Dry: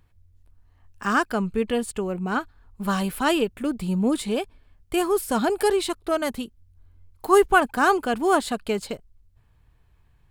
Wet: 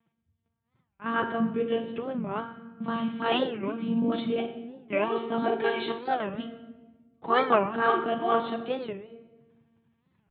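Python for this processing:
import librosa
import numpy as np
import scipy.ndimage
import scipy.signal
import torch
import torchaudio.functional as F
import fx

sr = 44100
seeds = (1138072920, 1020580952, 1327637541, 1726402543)

y = fx.vibrato(x, sr, rate_hz=10.0, depth_cents=56.0)
y = fx.low_shelf(y, sr, hz=240.0, db=9.5)
y = fx.room_flutter(y, sr, wall_m=8.6, rt60_s=0.26)
y = fx.lpc_monotone(y, sr, seeds[0], pitch_hz=230.0, order=16)
y = scipy.signal.sosfilt(scipy.signal.butter(4, 120.0, 'highpass', fs=sr, output='sos'), y)
y = fx.room_shoebox(y, sr, seeds[1], volume_m3=760.0, walls='mixed', distance_m=0.68)
y = fx.record_warp(y, sr, rpm=45.0, depth_cents=250.0)
y = F.gain(torch.from_numpy(y), -6.0).numpy()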